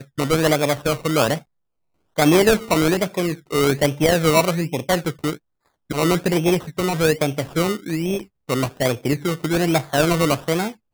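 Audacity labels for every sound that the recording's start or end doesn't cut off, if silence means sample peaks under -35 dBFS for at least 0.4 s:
2.180000	5.370000	sound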